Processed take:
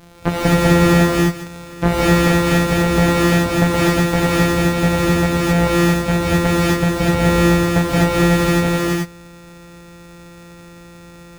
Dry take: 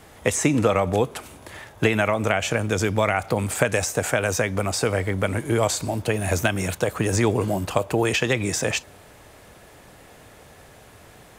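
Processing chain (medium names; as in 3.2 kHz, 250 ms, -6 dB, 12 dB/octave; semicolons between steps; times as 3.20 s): sorted samples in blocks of 256 samples; gated-style reverb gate 280 ms rising, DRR -2 dB; slew-rate limiter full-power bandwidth 340 Hz; trim +2.5 dB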